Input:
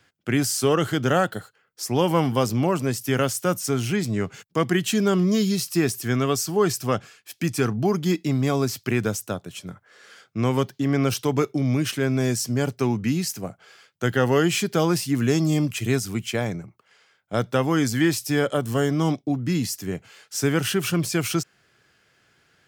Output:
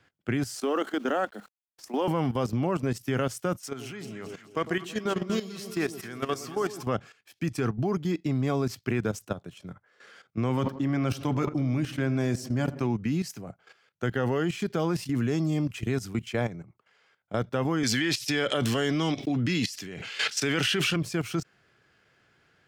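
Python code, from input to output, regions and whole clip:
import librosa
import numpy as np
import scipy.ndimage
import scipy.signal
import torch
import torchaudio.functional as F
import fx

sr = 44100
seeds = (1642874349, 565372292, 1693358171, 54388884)

y = fx.chain(x, sr, fx.cheby_ripple_highpass(hz=200.0, ripple_db=3),
    fx.quant_dither(seeds[0], bits=8, dither='none'), at=(0.55, 2.08))
y = fx.chain(y, sr, fx.highpass(hz=230.0, slope=6),
    fx.low_shelf(hz=480.0, db=-5.5),
    fx.echo_alternate(ms=108, hz=910.0, feedback_pct=77, wet_db=-8.5), at=(3.57, 6.83))
y = fx.chain(y, sr, fx.notch(hz=430.0, q=6.0),
    fx.echo_filtered(ms=89, feedback_pct=66, hz=1500.0, wet_db=-15.0),
    fx.sustainer(db_per_s=75.0), at=(10.49, 12.87))
y = fx.chain(y, sr, fx.weighting(curve='D'),
    fx.pre_swell(db_per_s=22.0), at=(17.83, 20.96))
y = fx.high_shelf(y, sr, hz=4900.0, db=-11.5)
y = fx.level_steps(y, sr, step_db=13)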